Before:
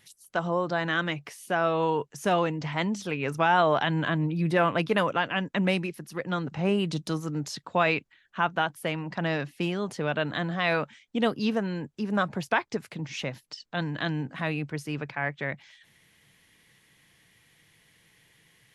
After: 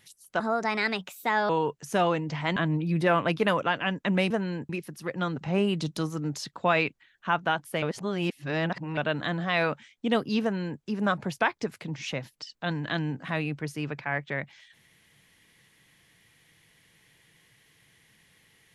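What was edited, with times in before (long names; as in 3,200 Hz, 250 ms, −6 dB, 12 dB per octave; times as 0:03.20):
0:00.40–0:01.81: play speed 129%
0:02.88–0:04.06: remove
0:08.93–0:10.08: reverse
0:11.53–0:11.92: duplicate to 0:05.80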